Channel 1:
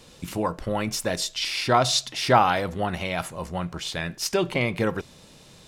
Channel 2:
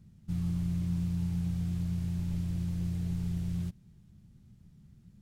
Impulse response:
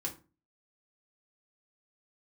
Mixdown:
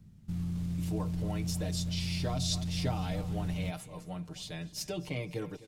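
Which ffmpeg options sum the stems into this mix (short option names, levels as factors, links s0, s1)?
-filter_complex "[0:a]equalizer=f=1400:t=o:w=1.5:g=-9.5,aecho=1:1:6.6:0.89,adelay=550,volume=0.251,asplit=2[s0][s1];[s1]volume=0.112[s2];[1:a]alimiter=level_in=1.88:limit=0.0631:level=0:latency=1:release=15,volume=0.531,volume=1.12[s3];[s2]aecho=0:1:254|508|762|1016|1270:1|0.33|0.109|0.0359|0.0119[s4];[s0][s3][s4]amix=inputs=3:normalize=0,acrossover=split=340|3000[s5][s6][s7];[s6]acompressor=threshold=0.0141:ratio=6[s8];[s5][s8][s7]amix=inputs=3:normalize=0"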